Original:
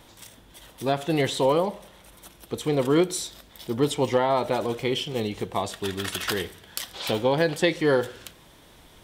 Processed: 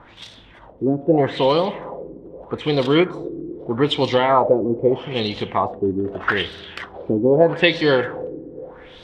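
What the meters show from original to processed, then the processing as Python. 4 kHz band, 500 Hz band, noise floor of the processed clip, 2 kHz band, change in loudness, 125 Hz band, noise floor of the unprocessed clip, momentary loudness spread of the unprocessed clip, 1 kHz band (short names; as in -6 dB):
+5.0 dB, +6.0 dB, -46 dBFS, +7.0 dB, +6.0 dB, +4.5 dB, -53 dBFS, 12 LU, +6.5 dB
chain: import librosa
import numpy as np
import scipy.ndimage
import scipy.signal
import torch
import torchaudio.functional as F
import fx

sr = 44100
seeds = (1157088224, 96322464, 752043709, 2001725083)

y = fx.rev_spring(x, sr, rt60_s=3.4, pass_ms=(48, 60), chirp_ms=65, drr_db=15.0)
y = fx.filter_lfo_lowpass(y, sr, shape='sine', hz=0.8, low_hz=310.0, high_hz=4200.0, q=3.1)
y = y * librosa.db_to_amplitude(4.0)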